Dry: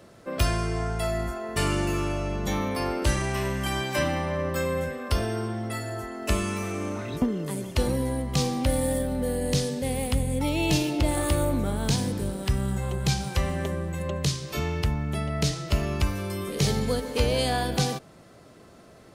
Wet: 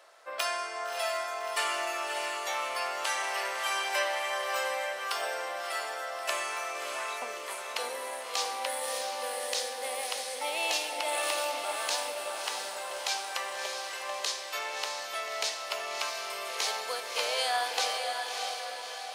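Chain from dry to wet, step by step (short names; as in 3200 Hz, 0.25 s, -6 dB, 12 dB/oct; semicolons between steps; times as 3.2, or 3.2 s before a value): HPF 670 Hz 24 dB/oct; high shelf 8000 Hz -5.5 dB; on a send: diffused feedback echo 0.619 s, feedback 55%, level -4 dB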